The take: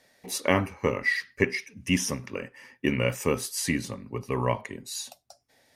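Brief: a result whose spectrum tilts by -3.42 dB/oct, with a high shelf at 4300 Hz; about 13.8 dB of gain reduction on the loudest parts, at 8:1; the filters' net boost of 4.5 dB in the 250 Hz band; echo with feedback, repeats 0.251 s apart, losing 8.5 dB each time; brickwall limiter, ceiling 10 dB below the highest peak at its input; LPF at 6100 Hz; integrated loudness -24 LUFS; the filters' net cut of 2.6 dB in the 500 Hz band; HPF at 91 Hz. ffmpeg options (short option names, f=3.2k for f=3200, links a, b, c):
-af "highpass=91,lowpass=6.1k,equalizer=f=250:t=o:g=7,equalizer=f=500:t=o:g=-5.5,highshelf=f=4.3k:g=5.5,acompressor=threshold=-31dB:ratio=8,alimiter=level_in=1.5dB:limit=-24dB:level=0:latency=1,volume=-1.5dB,aecho=1:1:251|502|753|1004:0.376|0.143|0.0543|0.0206,volume=14dB"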